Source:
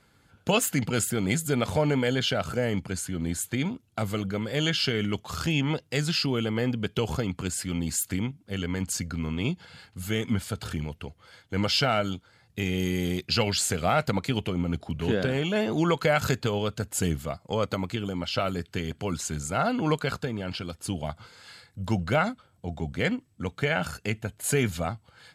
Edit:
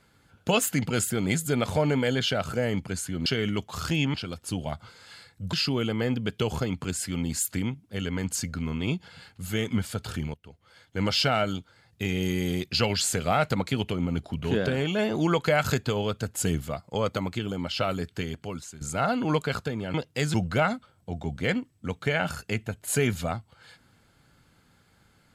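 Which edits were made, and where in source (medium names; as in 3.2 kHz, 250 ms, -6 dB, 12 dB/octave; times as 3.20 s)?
3.26–4.82 s: delete
5.70–6.10 s: swap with 20.51–21.90 s
10.91–11.59 s: fade in, from -19 dB
18.74–19.38 s: fade out, to -16.5 dB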